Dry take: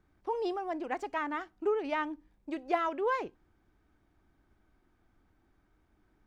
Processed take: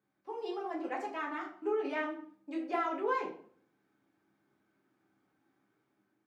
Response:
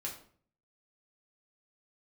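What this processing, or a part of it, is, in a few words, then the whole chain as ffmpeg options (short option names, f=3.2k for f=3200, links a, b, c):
far laptop microphone: -filter_complex "[1:a]atrim=start_sample=2205[a];[0:a][a]afir=irnorm=-1:irlink=0,highpass=f=150:w=0.5412,highpass=f=150:w=1.3066,dynaudnorm=f=130:g=7:m=5dB,volume=-7dB"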